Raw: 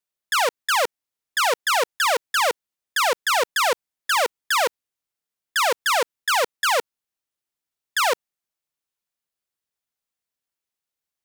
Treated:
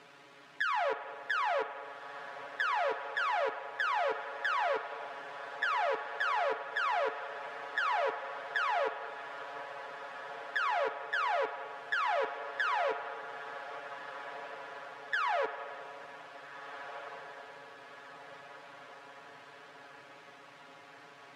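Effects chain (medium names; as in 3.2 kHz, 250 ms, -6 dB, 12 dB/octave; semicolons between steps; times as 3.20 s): jump at every zero crossing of -37.5 dBFS; compression, threshold -28 dBFS, peak gain reduction 10.5 dB; granular stretch 1.9×, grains 30 ms; band-pass 180–2000 Hz; on a send: echo that smears into a reverb 1678 ms, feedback 56%, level -11.5 dB; on the sum: spring tank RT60 2.9 s, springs 37/55 ms, chirp 60 ms, DRR 9.5 dB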